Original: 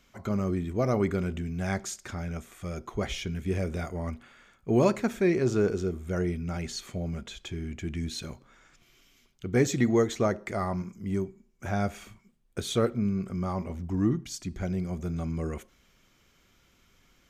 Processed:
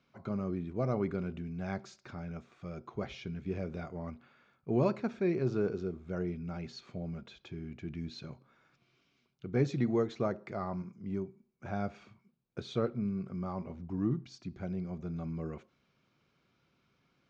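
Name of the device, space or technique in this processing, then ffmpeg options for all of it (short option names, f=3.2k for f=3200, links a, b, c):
guitar cabinet: -af "highpass=110,equalizer=f=140:t=q:w=4:g=7,equalizer=f=1.9k:t=q:w=4:g=-7,equalizer=f=3.2k:t=q:w=4:g=-7,lowpass=f=4.5k:w=0.5412,lowpass=f=4.5k:w=1.3066,volume=-6.5dB"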